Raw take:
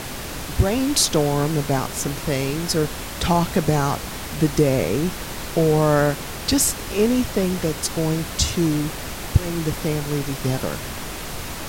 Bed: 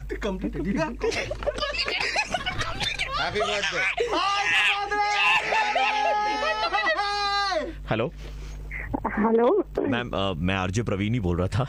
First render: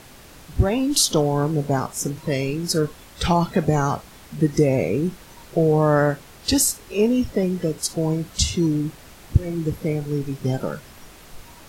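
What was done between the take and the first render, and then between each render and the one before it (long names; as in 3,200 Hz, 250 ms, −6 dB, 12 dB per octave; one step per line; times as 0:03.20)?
noise reduction from a noise print 14 dB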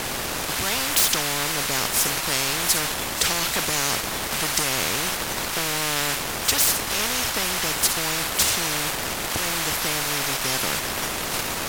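leveller curve on the samples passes 1
every bin compressed towards the loudest bin 10 to 1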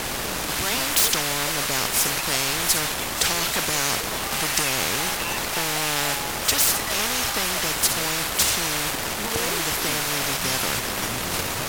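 mix in bed −12.5 dB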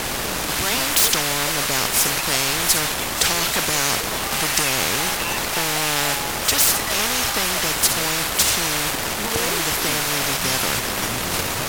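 level +3 dB
brickwall limiter −2 dBFS, peak gain reduction 2 dB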